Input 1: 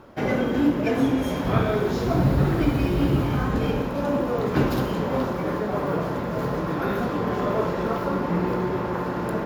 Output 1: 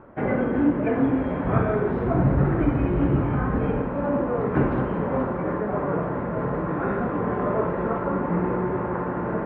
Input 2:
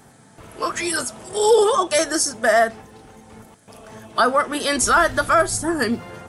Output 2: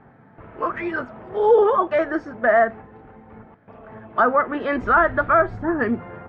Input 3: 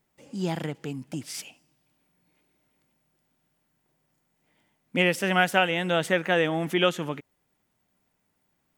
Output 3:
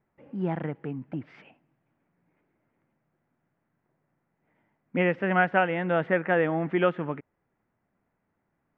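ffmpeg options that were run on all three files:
-af "lowpass=frequency=2000:width=0.5412,lowpass=frequency=2000:width=1.3066"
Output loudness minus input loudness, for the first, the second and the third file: 0.0, −1.0, −1.0 LU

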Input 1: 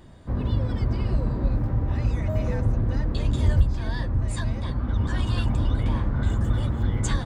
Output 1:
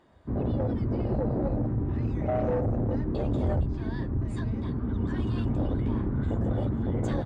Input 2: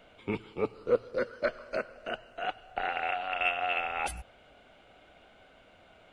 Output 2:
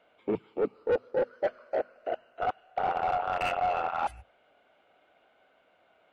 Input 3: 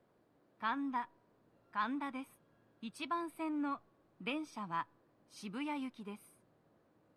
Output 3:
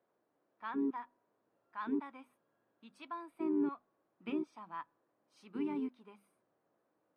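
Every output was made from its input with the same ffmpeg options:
-filter_complex "[0:a]bandreject=frequency=50:width_type=h:width=6,bandreject=frequency=100:width_type=h:width=6,bandreject=frequency=150:width_type=h:width=6,bandreject=frequency=200:width_type=h:width=6,bandreject=frequency=250:width_type=h:width=6,afwtdn=0.0447,highshelf=frequency=5000:gain=3,asplit=2[link_01][link_02];[link_02]highpass=frequency=720:poles=1,volume=29dB,asoftclip=type=tanh:threshold=-7.5dB[link_03];[link_01][link_03]amix=inputs=2:normalize=0,lowpass=frequency=1100:poles=1,volume=-6dB,volume=-8dB"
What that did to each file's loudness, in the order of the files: −3.5, +1.5, +1.5 LU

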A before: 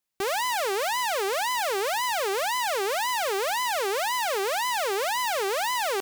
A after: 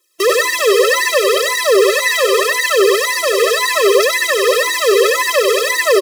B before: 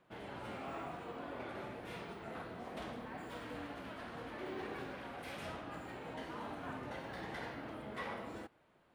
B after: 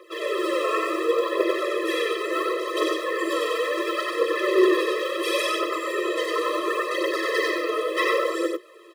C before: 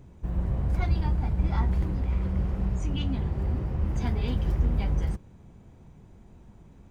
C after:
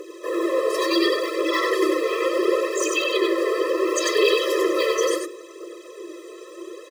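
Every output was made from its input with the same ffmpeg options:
-filter_complex "[0:a]aemphasis=mode=reproduction:type=50fm,bandreject=frequency=60:width_type=h:width=6,bandreject=frequency=120:width_type=h:width=6,bandreject=frequency=180:width_type=h:width=6,bandreject=frequency=240:width_type=h:width=6,bandreject=frequency=300:width_type=h:width=6,bandreject=frequency=360:width_type=h:width=6,bandreject=frequency=420:width_type=h:width=6,bandreject=frequency=480:width_type=h:width=6,bandreject=frequency=540:width_type=h:width=6,acrossover=split=3400[link_01][link_02];[link_02]acompressor=threshold=-40dB:ratio=4:attack=1:release=60[link_03];[link_01][link_03]amix=inputs=2:normalize=0,equalizer=frequency=370:width_type=o:width=0.5:gain=13,aecho=1:1:3.9:0.54,acrossover=split=360|1900[link_04][link_05][link_06];[link_04]acompressor=threshold=-34dB:ratio=4[link_07];[link_05]acompressor=threshold=-32dB:ratio=4[link_08];[link_06]acompressor=threshold=-44dB:ratio=4[link_09];[link_07][link_08][link_09]amix=inputs=3:normalize=0,aphaser=in_gain=1:out_gain=1:delay=4.8:decay=0.58:speed=0.71:type=triangular,crystalizer=i=6:c=0,apsyclip=21.5dB,asplit=2[link_10][link_11];[link_11]aecho=0:1:95:0.668[link_12];[link_10][link_12]amix=inputs=2:normalize=0,afftfilt=real='re*eq(mod(floor(b*sr/1024/340),2),1)':imag='im*eq(mod(floor(b*sr/1024/340),2),1)':win_size=1024:overlap=0.75,volume=-6dB"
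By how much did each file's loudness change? +13.0, +21.5, +7.0 LU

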